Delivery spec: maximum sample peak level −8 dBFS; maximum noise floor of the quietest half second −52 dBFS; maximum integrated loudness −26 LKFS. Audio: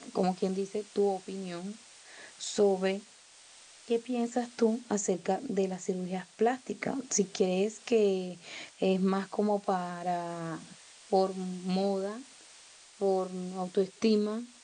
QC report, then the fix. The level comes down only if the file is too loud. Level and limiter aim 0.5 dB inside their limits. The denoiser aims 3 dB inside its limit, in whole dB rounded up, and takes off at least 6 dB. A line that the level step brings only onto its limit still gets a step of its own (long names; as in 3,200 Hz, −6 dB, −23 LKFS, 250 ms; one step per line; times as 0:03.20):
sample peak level −15.0 dBFS: in spec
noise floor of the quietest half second −56 dBFS: in spec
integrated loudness −31.5 LKFS: in spec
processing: no processing needed